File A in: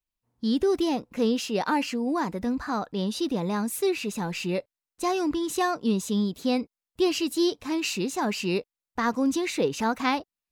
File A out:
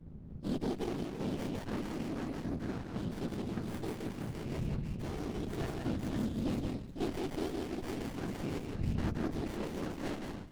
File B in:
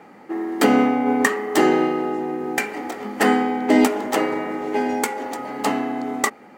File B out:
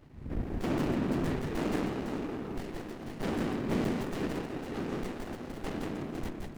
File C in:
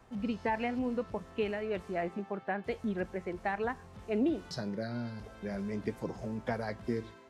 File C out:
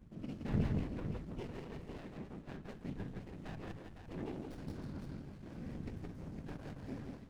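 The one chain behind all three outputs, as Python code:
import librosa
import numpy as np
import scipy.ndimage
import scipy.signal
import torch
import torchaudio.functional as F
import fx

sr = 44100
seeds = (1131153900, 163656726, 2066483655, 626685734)

y = fx.dmg_wind(x, sr, seeds[0], corner_hz=100.0, level_db=-34.0)
y = scipy.signal.sosfilt(scipy.signal.butter(2, 52.0, 'highpass', fs=sr, output='sos'), y)
y = fx.peak_eq(y, sr, hz=610.0, db=-11.5, octaves=2.0)
y = fx.whisperise(y, sr, seeds[1])
y = fx.hum_notches(y, sr, base_hz=60, count=3)
y = np.clip(y, -10.0 ** (-19.0 / 20.0), 10.0 ** (-19.0 / 20.0))
y = fx.echo_multitap(y, sr, ms=(169, 220, 310, 507), db=(-3.5, -19.5, -17.0, -8.0))
y = fx.running_max(y, sr, window=33)
y = y * 10.0 ** (-6.5 / 20.0)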